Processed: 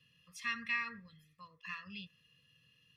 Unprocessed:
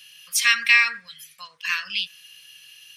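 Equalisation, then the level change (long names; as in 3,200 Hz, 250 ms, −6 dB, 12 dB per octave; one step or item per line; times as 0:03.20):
moving average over 58 samples
low-shelf EQ 240 Hz +5 dB
+1.5 dB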